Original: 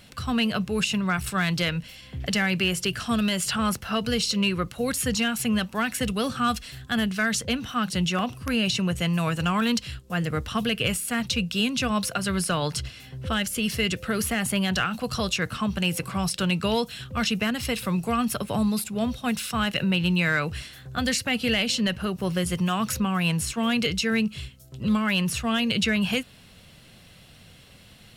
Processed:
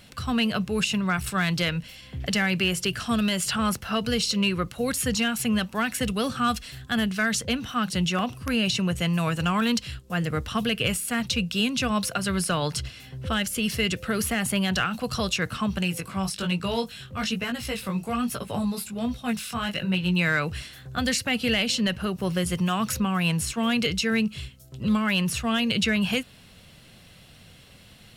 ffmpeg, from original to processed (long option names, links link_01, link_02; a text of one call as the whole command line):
ffmpeg -i in.wav -filter_complex "[0:a]asplit=3[link_01][link_02][link_03];[link_01]afade=type=out:start_time=15.82:duration=0.02[link_04];[link_02]flanger=delay=16:depth=4.9:speed=1.2,afade=type=in:start_time=15.82:duration=0.02,afade=type=out:start_time=20.14:duration=0.02[link_05];[link_03]afade=type=in:start_time=20.14:duration=0.02[link_06];[link_04][link_05][link_06]amix=inputs=3:normalize=0" out.wav